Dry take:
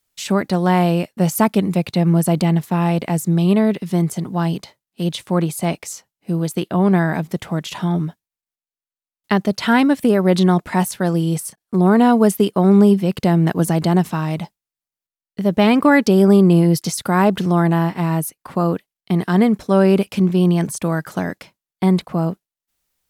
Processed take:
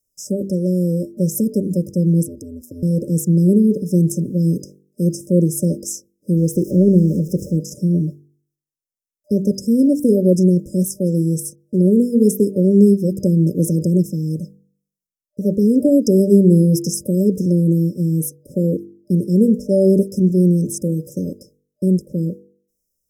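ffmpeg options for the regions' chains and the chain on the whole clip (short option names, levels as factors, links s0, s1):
-filter_complex "[0:a]asettb=1/sr,asplit=3[s0][s1][s2];[s0]atrim=end=2.234[s3];[s1]atrim=start=2.23:end=2.83,asetpts=PTS-STARTPTS,afade=t=in:d=0.004:c=qsin,afade=t=out:st=0.596:d=0.004:c=qsin,aeval=exprs='val(0)*sin(2*PI*84*n/s)':c=same,acompressor=threshold=0.0501:ratio=12:attack=3.2:release=140:knee=1:detection=peak,highpass=f=200:p=1[s4];[s2]atrim=start=2.826[s5];[s3][s4]acrossfade=d=0.004:c1=hsin:c2=qsin[s6];[s6][s5]acrossfade=d=0.004:c1=qsin:c2=hsin,asettb=1/sr,asplit=3[s7][s8][s9];[s7]atrim=end=6.374[s10];[s8]atrim=start=6.37:end=7.57,asetpts=PTS-STARTPTS,afade=t=in:d=0.004:c=qsin,afade=t=out:st=1.196:d=0.004:c=qsin,aeval=exprs='val(0)+0.5*0.0282*sgn(val(0))':c=same,highshelf=f=5100:g=-7[s11];[s9]atrim=start=7.566[s12];[s10][s11]acrossfade=d=0.004:c1=hsin:c2=qsin[s13];[s13][s12]acrossfade=d=0.004:c1=qsin:c2=hsin,bandreject=f=48.69:t=h:w=4,bandreject=f=97.38:t=h:w=4,bandreject=f=146.07:t=h:w=4,bandreject=f=194.76:t=h:w=4,bandreject=f=243.45:t=h:w=4,bandreject=f=292.14:t=h:w=4,bandreject=f=340.83:t=h:w=4,bandreject=f=389.52:t=h:w=4,bandreject=f=438.21:t=h:w=4,bandreject=f=486.9:t=h:w=4,afftfilt=real='re*(1-between(b*sr/4096,600,5000))':imag='im*(1-between(b*sr/4096,600,5000))':win_size=4096:overlap=0.75,dynaudnorm=f=900:g=7:m=3.76,volume=0.891"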